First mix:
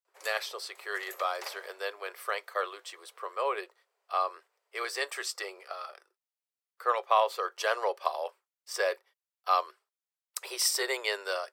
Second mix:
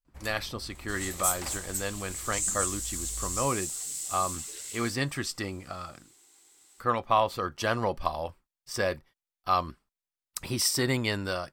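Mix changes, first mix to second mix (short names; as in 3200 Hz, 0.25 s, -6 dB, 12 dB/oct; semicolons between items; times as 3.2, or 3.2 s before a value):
second sound: unmuted; master: remove Chebyshev high-pass 400 Hz, order 6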